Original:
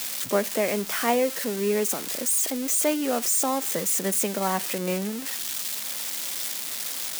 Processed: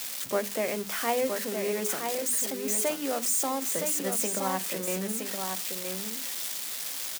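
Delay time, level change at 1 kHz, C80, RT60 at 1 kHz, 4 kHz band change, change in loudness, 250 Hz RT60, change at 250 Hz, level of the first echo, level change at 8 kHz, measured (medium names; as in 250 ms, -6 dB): 968 ms, -3.5 dB, no reverb, no reverb, -3.5 dB, -3.5 dB, no reverb, -5.5 dB, -5.5 dB, -3.5 dB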